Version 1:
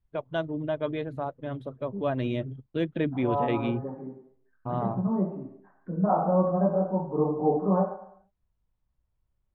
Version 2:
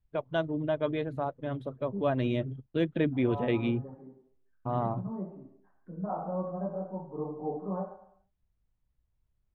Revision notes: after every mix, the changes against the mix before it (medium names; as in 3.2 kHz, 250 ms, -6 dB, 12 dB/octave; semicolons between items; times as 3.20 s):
second voice -10.5 dB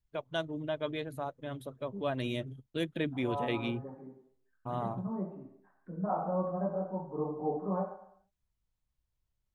first voice -7.0 dB; master: remove tape spacing loss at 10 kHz 29 dB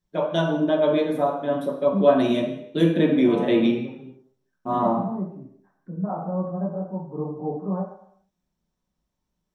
first voice: send on; second voice: add bass shelf 310 Hz +11.5 dB